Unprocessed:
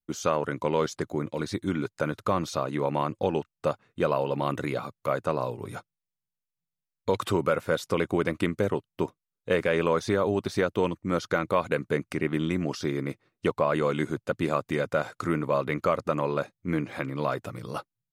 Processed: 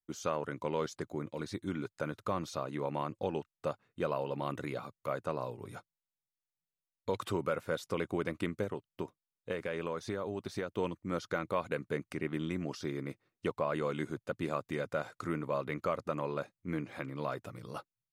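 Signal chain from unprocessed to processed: 8.63–10.77 s: compression 3:1, threshold -25 dBFS, peak gain reduction 5.5 dB; trim -8.5 dB

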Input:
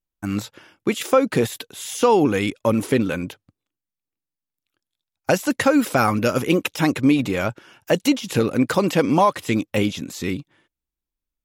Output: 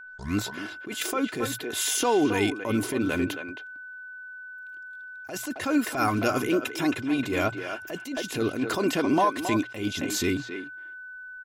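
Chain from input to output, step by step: tape start-up on the opening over 0.35 s; hum notches 60/120 Hz; comb 2.9 ms, depth 52%; compression 3:1, threshold -31 dBFS, peak gain reduction 15.5 dB; whistle 1.5 kHz -48 dBFS; speakerphone echo 270 ms, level -8 dB; attacks held to a fixed rise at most 120 dB/s; trim +6.5 dB

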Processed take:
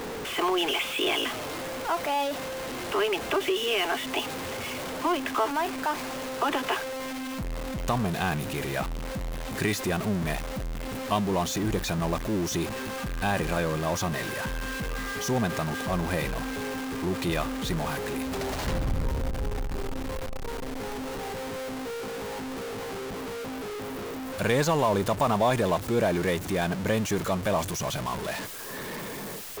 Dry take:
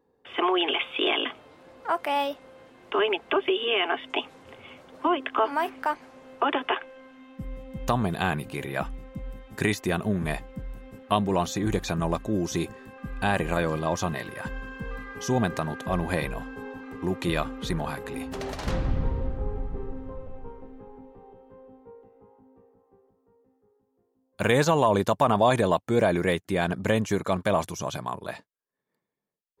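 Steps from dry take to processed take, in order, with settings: jump at every zero crossing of -24.5 dBFS; trim -4.5 dB

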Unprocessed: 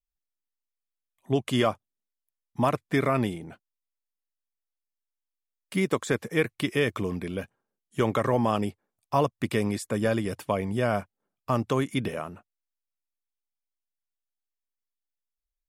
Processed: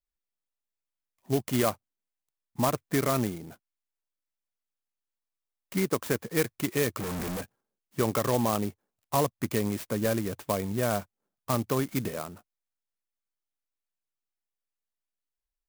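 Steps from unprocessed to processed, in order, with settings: 7.00–7.41 s: one-bit comparator; sampling jitter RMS 0.071 ms; trim -2 dB

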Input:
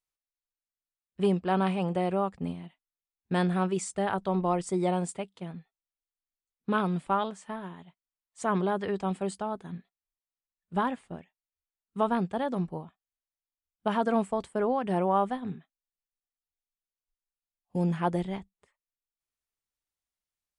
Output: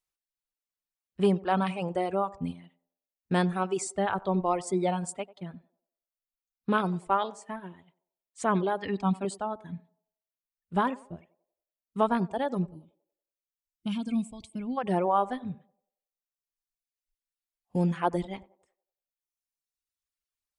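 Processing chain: 12.72–14.77 s: time-frequency box 340–2100 Hz -21 dB; reverb removal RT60 1.7 s; 8.82–9.25 s: graphic EQ 250/500/1000/4000/8000 Hz +9/-9/+5/+4/-7 dB; on a send: band-passed feedback delay 93 ms, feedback 44%, band-pass 580 Hz, level -18.5 dB; on the sum: trim +2 dB

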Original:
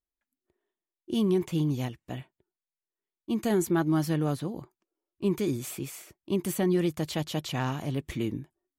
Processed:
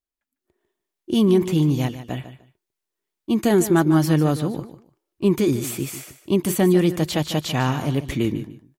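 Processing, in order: on a send: feedback delay 149 ms, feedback 20%, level -12.5 dB; on the sum: level rider gain up to 8.5 dB

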